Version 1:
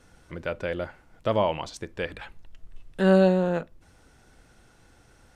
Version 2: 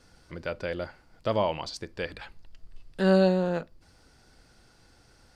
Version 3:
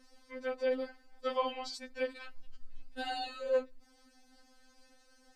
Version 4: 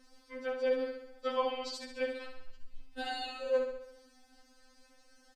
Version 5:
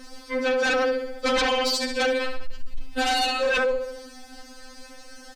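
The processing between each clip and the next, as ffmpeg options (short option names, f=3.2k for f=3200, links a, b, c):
-af "equalizer=f=4.7k:w=4.3:g=12.5,volume=-2.5dB"
-af "afftfilt=real='re*3.46*eq(mod(b,12),0)':imag='im*3.46*eq(mod(b,12),0)':win_size=2048:overlap=0.75,volume=-2dB"
-af "aecho=1:1:68|136|204|272|340|408|476:0.447|0.246|0.135|0.0743|0.0409|0.0225|0.0124"
-af "aeval=exprs='0.112*sin(PI/2*5.62*val(0)/0.112)':c=same"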